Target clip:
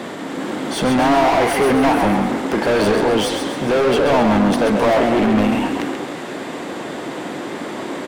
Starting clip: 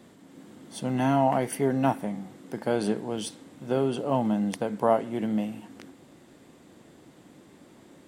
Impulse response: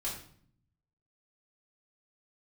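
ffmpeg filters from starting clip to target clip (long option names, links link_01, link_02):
-filter_complex "[0:a]asplit=2[link_01][link_02];[link_02]highpass=frequency=720:poles=1,volume=38dB,asoftclip=type=tanh:threshold=-8.5dB[link_03];[link_01][link_03]amix=inputs=2:normalize=0,lowpass=frequency=1900:poles=1,volume=-6dB,asplit=7[link_04][link_05][link_06][link_07][link_08][link_09][link_10];[link_05]adelay=134,afreqshift=34,volume=-6dB[link_11];[link_06]adelay=268,afreqshift=68,volume=-12.4dB[link_12];[link_07]adelay=402,afreqshift=102,volume=-18.8dB[link_13];[link_08]adelay=536,afreqshift=136,volume=-25.1dB[link_14];[link_09]adelay=670,afreqshift=170,volume=-31.5dB[link_15];[link_10]adelay=804,afreqshift=204,volume=-37.9dB[link_16];[link_04][link_11][link_12][link_13][link_14][link_15][link_16]amix=inputs=7:normalize=0"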